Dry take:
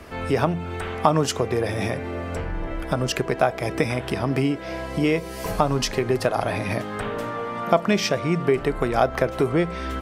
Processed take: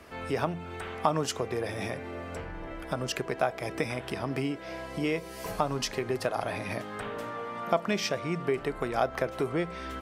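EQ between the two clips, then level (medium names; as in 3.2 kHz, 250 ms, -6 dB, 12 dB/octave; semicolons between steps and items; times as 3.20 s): bass shelf 69 Hz -6 dB; bass shelf 480 Hz -3 dB; -6.5 dB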